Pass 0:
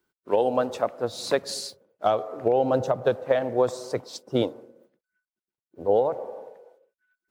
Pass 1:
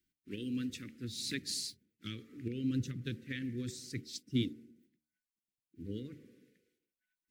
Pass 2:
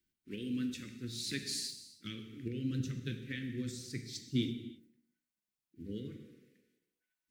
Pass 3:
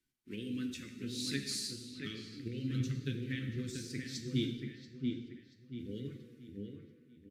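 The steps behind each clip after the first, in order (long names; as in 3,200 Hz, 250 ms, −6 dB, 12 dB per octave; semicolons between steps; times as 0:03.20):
Chebyshev band-stop filter 290–2,000 Hz, order 3; low-shelf EQ 79 Hz +7.5 dB; hum removal 75.6 Hz, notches 12; level −4 dB
reverb whose tail is shaped and stops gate 360 ms falling, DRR 5.5 dB; level −1 dB
delay with a low-pass on its return 683 ms, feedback 35%, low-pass 2,600 Hz, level −4.5 dB; downsampling to 32,000 Hz; flanger 0.33 Hz, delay 7.1 ms, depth 8 ms, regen +49%; level +4 dB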